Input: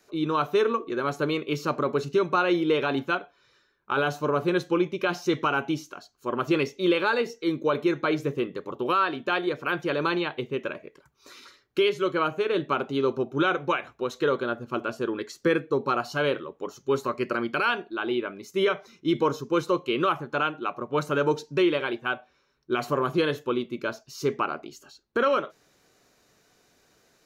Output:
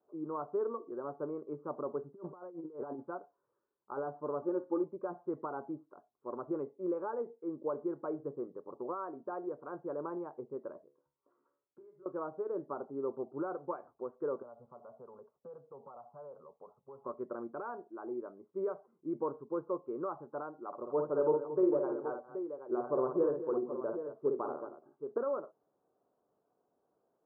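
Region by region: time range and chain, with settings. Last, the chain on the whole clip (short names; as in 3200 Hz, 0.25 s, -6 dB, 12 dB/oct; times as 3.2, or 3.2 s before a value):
2.14–3 negative-ratio compressor -29 dBFS, ratio -0.5 + air absorption 350 m
4.41–4.84 comb 3.4 ms, depth 78% + flutter echo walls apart 10.2 m, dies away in 0.2 s
10.84–12.06 compressor 4:1, threshold -34 dBFS + resonator 71 Hz, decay 0.43 s, mix 80%
14.42–17.06 fixed phaser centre 780 Hz, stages 4 + compressor 3:1, threshold -41 dBFS + sample leveller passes 1
20.67–25.18 dynamic EQ 470 Hz, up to +6 dB, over -37 dBFS, Q 1.1 + tapped delay 54/180/226/776 ms -5/-19/-12/-9.5 dB
whole clip: Bessel low-pass 550 Hz, order 8; differentiator; gain +15 dB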